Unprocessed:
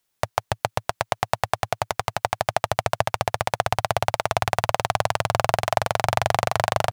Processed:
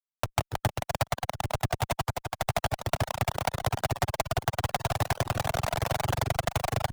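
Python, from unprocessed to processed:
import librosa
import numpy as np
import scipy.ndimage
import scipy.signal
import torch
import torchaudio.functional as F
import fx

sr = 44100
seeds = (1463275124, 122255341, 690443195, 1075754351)

p1 = fx.high_shelf(x, sr, hz=8600.0, db=3.5)
p2 = p1 + fx.echo_single(p1, sr, ms=173, db=-18.5, dry=0)
p3 = fx.rider(p2, sr, range_db=10, speed_s=0.5)
p4 = fx.leveller(p3, sr, passes=1)
p5 = fx.peak_eq(p4, sr, hz=2000.0, db=-7.5, octaves=0.27)
p6 = fx.leveller(p5, sr, passes=2)
p7 = fx.fuzz(p6, sr, gain_db=36.0, gate_db=-45.0)
p8 = fx.tremolo_shape(p7, sr, shape='triangle', hz=11.0, depth_pct=90)
p9 = fx.dereverb_blind(p8, sr, rt60_s=0.55)
p10 = fx.band_squash(p9, sr, depth_pct=70)
y = p10 * librosa.db_to_amplitude(-5.0)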